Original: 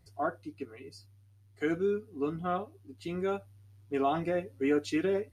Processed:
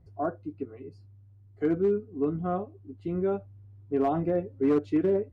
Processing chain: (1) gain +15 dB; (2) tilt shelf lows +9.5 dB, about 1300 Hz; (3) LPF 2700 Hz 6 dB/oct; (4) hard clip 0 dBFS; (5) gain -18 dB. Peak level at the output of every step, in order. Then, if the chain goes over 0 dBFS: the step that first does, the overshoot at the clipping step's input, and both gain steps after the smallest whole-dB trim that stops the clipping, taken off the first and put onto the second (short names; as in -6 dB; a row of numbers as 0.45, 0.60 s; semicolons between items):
-1.5, +4.5, +4.5, 0.0, -18.0 dBFS; step 2, 4.5 dB; step 1 +10 dB, step 5 -13 dB